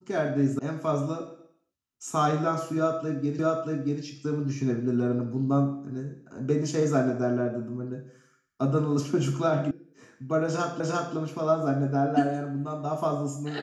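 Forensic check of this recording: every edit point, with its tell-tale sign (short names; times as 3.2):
0.59 sound cut off
3.39 repeat of the last 0.63 s
9.71 sound cut off
10.8 repeat of the last 0.35 s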